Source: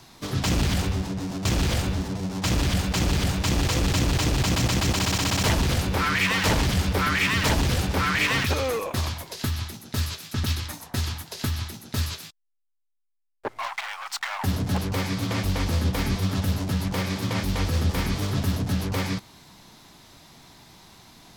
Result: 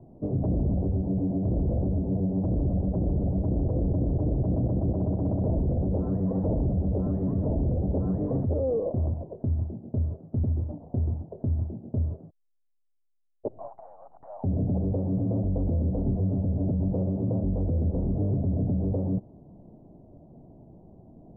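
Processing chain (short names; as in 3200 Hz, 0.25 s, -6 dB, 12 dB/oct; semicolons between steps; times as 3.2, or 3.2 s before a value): elliptic low-pass 640 Hz, stop band 80 dB; limiter -24 dBFS, peak gain reduction 9 dB; gain +4.5 dB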